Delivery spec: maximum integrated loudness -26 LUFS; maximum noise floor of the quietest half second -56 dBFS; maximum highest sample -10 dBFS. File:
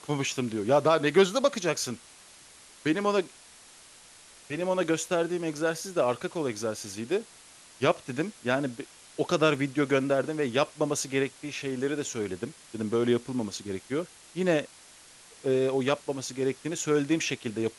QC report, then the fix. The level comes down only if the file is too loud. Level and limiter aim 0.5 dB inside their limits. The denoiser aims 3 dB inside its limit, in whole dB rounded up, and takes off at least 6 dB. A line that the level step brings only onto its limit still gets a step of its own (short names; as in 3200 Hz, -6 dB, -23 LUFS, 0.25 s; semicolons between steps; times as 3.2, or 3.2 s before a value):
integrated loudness -28.5 LUFS: OK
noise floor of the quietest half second -53 dBFS: fail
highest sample -9.0 dBFS: fail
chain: denoiser 6 dB, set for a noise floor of -53 dBFS; limiter -10.5 dBFS